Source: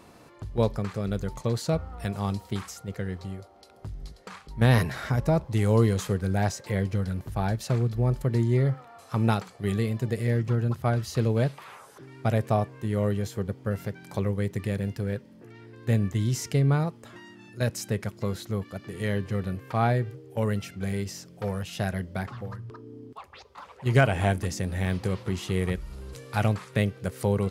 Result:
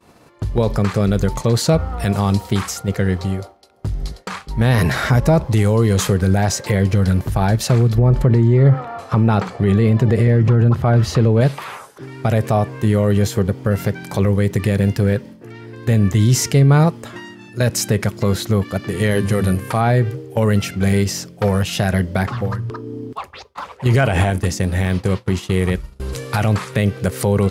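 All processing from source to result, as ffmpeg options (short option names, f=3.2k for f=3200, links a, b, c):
-filter_complex "[0:a]asettb=1/sr,asplit=3[a][b][c];[a]atrim=end=7.984[d];[b]atrim=start=7.98:end=11.41,asetpts=PTS-STARTPTS,afade=t=in:d=0.004:c=qsin,afade=t=out:st=3.426:d=0.004:c=qsin,lowpass=f=1.7k:p=1,acontrast=36[e];[c]atrim=start=11.406[f];[d][e]acrossfade=d=0.004:c1=hsin:c2=qsin[g];[g][f]acrossfade=d=0.004:c1=qsin:c2=hsin,asettb=1/sr,asplit=3[h][i][j];[h]atrim=end=19.114[k];[i]atrim=start=19.11:end=19.81,asetpts=PTS-STARTPTS,afade=t=in:d=0.004:c=qsin,afade=t=out:st=0.696:d=0.004:c=qsin,equalizer=f=10k:t=o:w=0.69:g=13.5,bandreject=f=50:t=h:w=6,bandreject=f=100:t=h:w=6,bandreject=f=150:t=h:w=6,bandreject=f=200:t=h:w=6,bandreject=f=250:t=h:w=6[l];[j]atrim=start=19.806[m];[k][l]acrossfade=d=0.004:c1=hsin:c2=qsin[n];[n][m]acrossfade=d=0.004:c1=qsin:c2=hsin,asettb=1/sr,asplit=3[o][p][q];[o]atrim=end=24.304[r];[p]atrim=start=24.3:end=26,asetpts=PTS-STARTPTS,afade=t=in:d=0.004:c=qsin,afade=t=out:st=1.696:d=0.004:c=qsin,agate=range=-33dB:threshold=-30dB:ratio=3:release=100:detection=peak,acompressor=threshold=-34dB:ratio=1.5:attack=3.2:release=140:knee=1:detection=peak[s];[q]atrim=start=25.996[t];[r][s]acrossfade=d=0.004:c1=hsin:c2=qsin[u];[u][t]acrossfade=d=0.004:c1=qsin:c2=hsin,agate=range=-33dB:threshold=-43dB:ratio=3:detection=peak,alimiter=level_in=19.5dB:limit=-1dB:release=50:level=0:latency=1,volume=-4.5dB"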